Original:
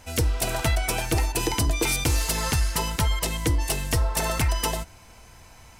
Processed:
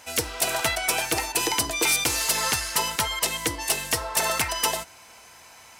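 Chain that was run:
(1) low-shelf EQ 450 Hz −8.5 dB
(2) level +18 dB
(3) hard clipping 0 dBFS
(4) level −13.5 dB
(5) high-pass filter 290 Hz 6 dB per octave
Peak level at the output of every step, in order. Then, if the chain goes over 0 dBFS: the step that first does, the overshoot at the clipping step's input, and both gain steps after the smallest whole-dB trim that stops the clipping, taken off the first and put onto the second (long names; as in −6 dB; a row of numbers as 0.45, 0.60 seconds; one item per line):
−13.0, +5.0, 0.0, −13.5, −11.0 dBFS
step 2, 5.0 dB
step 2 +13 dB, step 4 −8.5 dB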